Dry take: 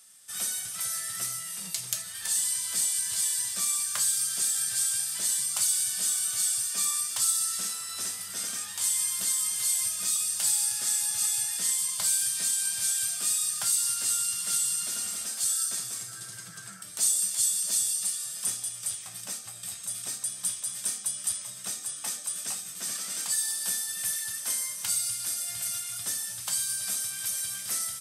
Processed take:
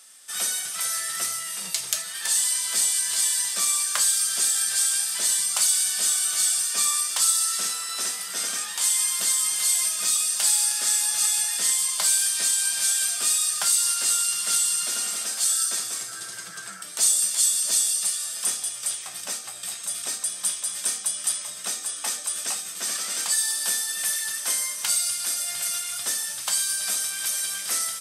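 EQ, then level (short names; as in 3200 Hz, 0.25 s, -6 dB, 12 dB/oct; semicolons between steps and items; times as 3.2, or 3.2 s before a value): HPF 300 Hz 12 dB/oct; high shelf 8100 Hz -7.5 dB; +8.5 dB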